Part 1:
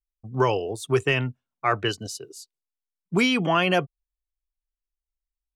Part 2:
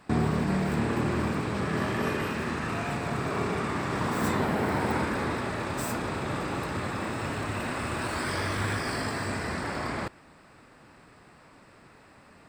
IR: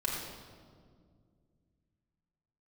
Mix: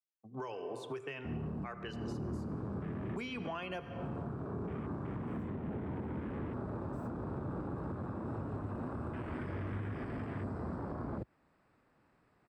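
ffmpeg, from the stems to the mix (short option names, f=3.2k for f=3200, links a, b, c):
-filter_complex "[0:a]highpass=f=140:w=0.5412,highpass=f=140:w=1.3066,lowshelf=f=290:g=-7.5,volume=-6dB,asplit=3[a][b][c];[b]volume=-15dB[d];[1:a]afwtdn=0.0251,acrossover=split=410[e][f];[f]acompressor=threshold=-40dB:ratio=6[g];[e][g]amix=inputs=2:normalize=0,asoftclip=type=tanh:threshold=-22dB,adelay=1150,volume=0.5dB[h];[c]apad=whole_len=601227[i];[h][i]sidechaincompress=threshold=-35dB:ratio=8:attack=16:release=460[j];[2:a]atrim=start_sample=2205[k];[d][k]afir=irnorm=-1:irlink=0[l];[a][j][l]amix=inputs=3:normalize=0,acrossover=split=88|4600[m][n][o];[m]acompressor=threshold=-43dB:ratio=4[p];[n]acompressor=threshold=-34dB:ratio=4[q];[o]acompressor=threshold=-54dB:ratio=4[r];[p][q][r]amix=inputs=3:normalize=0,highshelf=f=3.1k:g=-10.5,alimiter=level_in=6.5dB:limit=-24dB:level=0:latency=1:release=375,volume=-6.5dB"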